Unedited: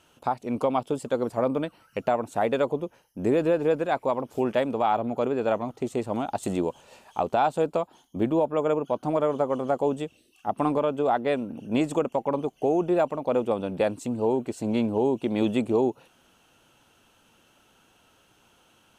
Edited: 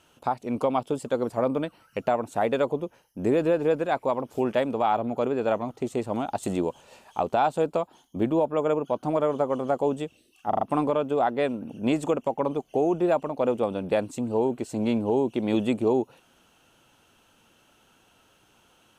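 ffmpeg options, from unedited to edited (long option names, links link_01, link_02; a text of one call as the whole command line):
ffmpeg -i in.wav -filter_complex "[0:a]asplit=4[link_01][link_02][link_03][link_04];[link_01]atrim=end=10.532[link_05];[link_02]atrim=start=10.488:end=10.532[link_06];[link_03]atrim=start=10.488:end=10.532[link_07];[link_04]atrim=start=10.488[link_08];[link_05][link_06]acrossfade=duration=0.004:curve1=hsin:curve2=hsin[link_09];[link_09][link_07]acrossfade=duration=0.004:curve1=hsin:curve2=hsin[link_10];[link_10][link_08]acrossfade=duration=0.004:curve1=hsin:curve2=hsin" out.wav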